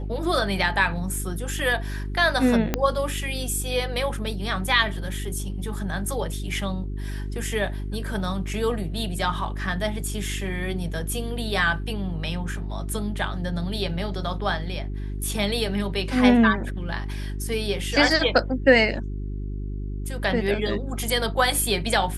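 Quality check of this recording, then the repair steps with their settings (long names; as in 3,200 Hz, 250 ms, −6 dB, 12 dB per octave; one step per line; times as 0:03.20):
mains hum 50 Hz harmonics 8 −30 dBFS
0:02.74: click −7 dBFS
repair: click removal
hum removal 50 Hz, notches 8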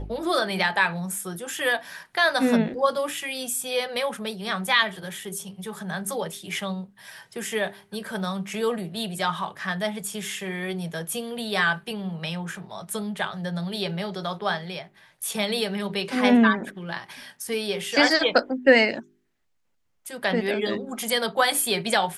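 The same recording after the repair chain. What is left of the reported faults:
0:02.74: click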